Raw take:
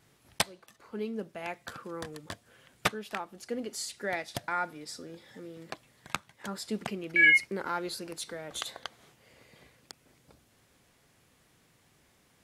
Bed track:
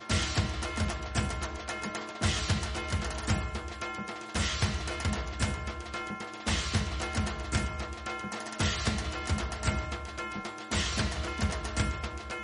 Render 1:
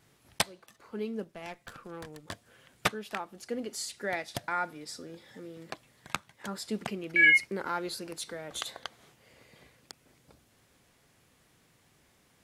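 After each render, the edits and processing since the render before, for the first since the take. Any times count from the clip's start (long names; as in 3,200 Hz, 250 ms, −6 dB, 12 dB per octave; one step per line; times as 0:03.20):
0:01.24–0:02.28: tube saturation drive 35 dB, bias 0.75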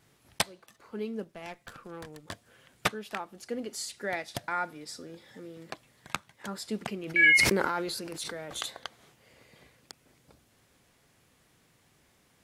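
0:07.01–0:08.66: level that may fall only so fast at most 31 dB per second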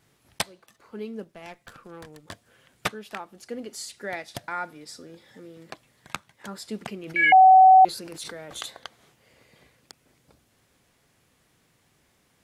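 0:07.32–0:07.85: beep over 755 Hz −9 dBFS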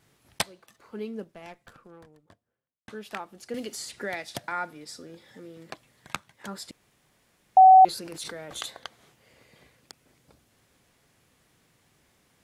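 0:00.97–0:02.88: fade out and dull
0:03.54–0:04.52: multiband upward and downward compressor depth 70%
0:06.71–0:07.57: fill with room tone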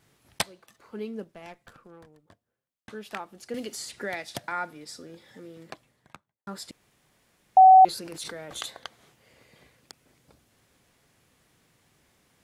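0:05.56–0:06.47: fade out and dull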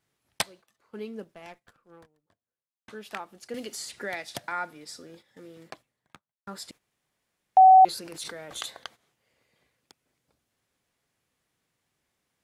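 noise gate −49 dBFS, range −12 dB
low-shelf EQ 410 Hz −4 dB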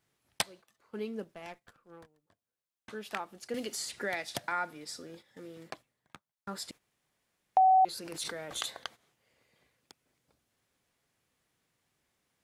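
downward compressor 2 to 1, threshold −28 dBFS, peak gain reduction 8.5 dB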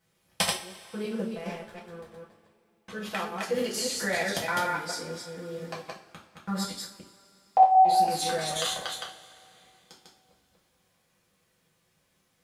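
delay that plays each chunk backwards 149 ms, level −2.5 dB
coupled-rooms reverb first 0.36 s, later 3 s, from −22 dB, DRR −4.5 dB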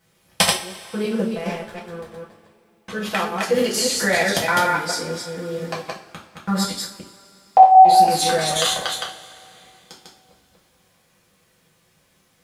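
level +9.5 dB
brickwall limiter −1 dBFS, peak gain reduction 2 dB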